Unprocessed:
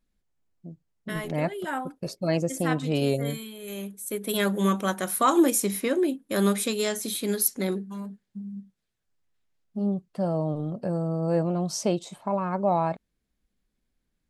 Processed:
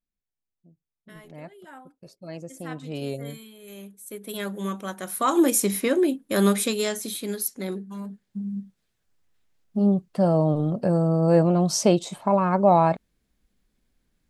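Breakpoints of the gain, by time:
2.11 s -14.5 dB
3.07 s -6.5 dB
4.91 s -6.5 dB
5.58 s +3 dB
6.61 s +3 dB
7.53 s -5 dB
8.48 s +6.5 dB

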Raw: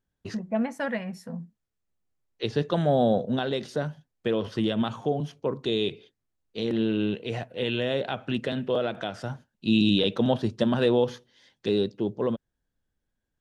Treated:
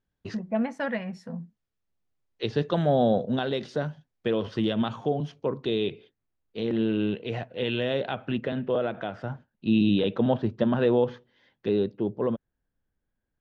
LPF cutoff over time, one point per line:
5.35 s 5200 Hz
5.82 s 3000 Hz
6.75 s 3000 Hz
7.93 s 4700 Hz
8.46 s 2300 Hz

